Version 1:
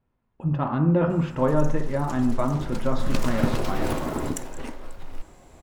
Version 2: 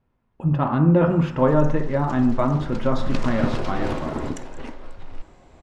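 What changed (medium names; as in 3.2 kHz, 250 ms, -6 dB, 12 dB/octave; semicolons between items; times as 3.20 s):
speech +4.0 dB; background: add low-pass 5 kHz 12 dB/octave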